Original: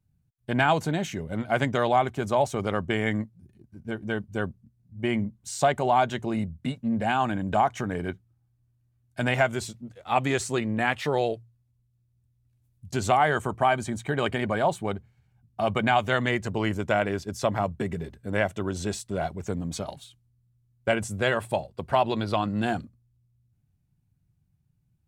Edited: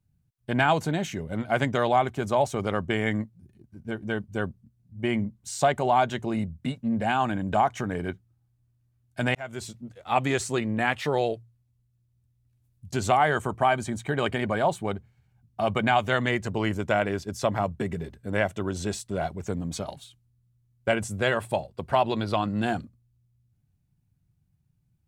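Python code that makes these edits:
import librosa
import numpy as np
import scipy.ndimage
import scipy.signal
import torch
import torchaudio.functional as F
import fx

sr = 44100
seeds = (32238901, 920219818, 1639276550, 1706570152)

y = fx.edit(x, sr, fx.fade_in_span(start_s=9.35, length_s=0.42), tone=tone)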